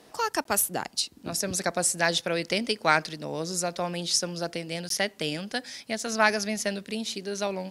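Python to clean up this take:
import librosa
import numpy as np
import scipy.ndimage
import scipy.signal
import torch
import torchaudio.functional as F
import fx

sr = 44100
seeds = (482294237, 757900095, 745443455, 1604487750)

y = fx.fix_interpolate(x, sr, at_s=(0.44, 4.89), length_ms=13.0)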